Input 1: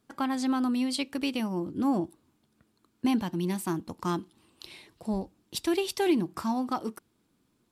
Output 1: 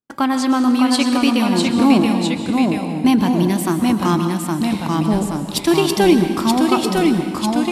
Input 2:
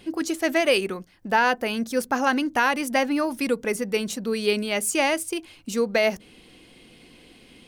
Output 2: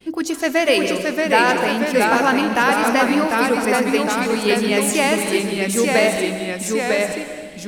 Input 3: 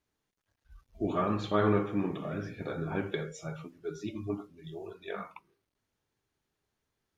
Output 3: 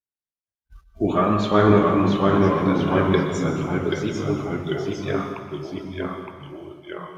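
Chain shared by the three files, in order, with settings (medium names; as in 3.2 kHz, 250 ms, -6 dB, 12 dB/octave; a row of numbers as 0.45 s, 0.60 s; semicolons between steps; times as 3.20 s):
expander -49 dBFS; plate-style reverb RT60 1.5 s, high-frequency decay 0.85×, pre-delay 105 ms, DRR 7 dB; ever faster or slower copies 596 ms, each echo -1 st, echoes 2; peak normalisation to -2 dBFS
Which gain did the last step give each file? +11.5 dB, +3.5 dB, +10.0 dB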